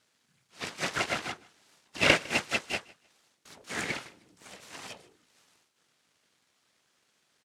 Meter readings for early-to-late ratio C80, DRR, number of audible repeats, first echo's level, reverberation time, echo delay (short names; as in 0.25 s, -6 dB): none, none, 1, -23.0 dB, none, 0.155 s